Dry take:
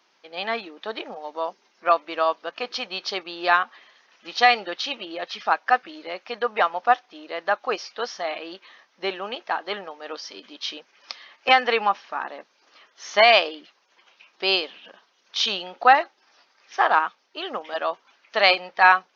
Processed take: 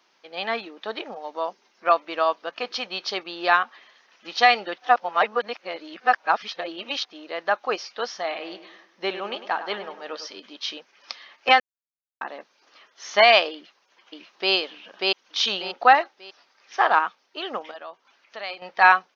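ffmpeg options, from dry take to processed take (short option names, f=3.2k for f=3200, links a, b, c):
-filter_complex "[0:a]asettb=1/sr,asplit=3[a][b][c];[a]atrim=end=8.244[d];[b]atrim=start=8.24:end=10.31,asetpts=PTS-STARTPTS,afade=t=in:d=0.004:c=qsin,afade=t=out:st=2.066:d=0.004:c=qsin,asplit=2[e][f];[f]adelay=101,lowpass=f=2.7k:p=1,volume=-11dB,asplit=2[g][h];[h]adelay=101,lowpass=f=2.7k:p=1,volume=0.47,asplit=2[i][j];[j]adelay=101,lowpass=f=2.7k:p=1,volume=0.47,asplit=2[k][l];[l]adelay=101,lowpass=f=2.7k:p=1,volume=0.47,asplit=2[m][n];[n]adelay=101,lowpass=f=2.7k:p=1,volume=0.47[o];[e][g][i][k][m][o]amix=inputs=6:normalize=0,atrim=end_sample=91287[p];[c]atrim=start=10.306[q];[d][p]acrossfade=d=0.004:c1=hsin:c2=qsin[r];[r][q]acrossfade=d=0.004:c1=qsin:c2=hsin,asplit=2[s][t];[t]afade=t=in:st=13.53:d=0.01,afade=t=out:st=14.53:d=0.01,aecho=0:1:590|1180|1770|2360:0.944061|0.283218|0.0849655|0.0254896[u];[s][u]amix=inputs=2:normalize=0,asettb=1/sr,asplit=3[v][w][x];[v]atrim=end=17.714[y];[w]atrim=start=17.71:end=18.62,asetpts=PTS-STARTPTS,afade=t=in:d=0.004:c=qsin,afade=t=out:st=0.906:d=0.004:c=qsin,acompressor=threshold=-58dB:ratio=1.5:attack=3.2:release=140:knee=1:detection=peak[z];[x]atrim=start=18.616[aa];[y][z]acrossfade=d=0.004:c1=hsin:c2=qsin[ab];[ab][aa]acrossfade=d=0.004:c1=qsin:c2=hsin,asplit=5[ac][ad][ae][af][ag];[ac]atrim=end=4.782[ah];[ad]atrim=start=4.778:end=7.052,asetpts=PTS-STARTPTS,areverse[ai];[ae]atrim=start=7.048:end=11.6,asetpts=PTS-STARTPTS,afade=t=out:st=4.548:d=0.004:c=hsin[aj];[af]atrim=start=11.6:end=12.21,asetpts=PTS-STARTPTS,volume=0[ak];[ag]atrim=start=12.21,asetpts=PTS-STARTPTS,afade=t=in:d=0.004:c=hsin[al];[ah][ai]acrossfade=d=0.004:c1=hsin:c2=hsin[am];[aj][ak][al]concat=n=3:v=0:a=1[an];[am][an]acrossfade=d=0.004:c1=hsin:c2=hsin"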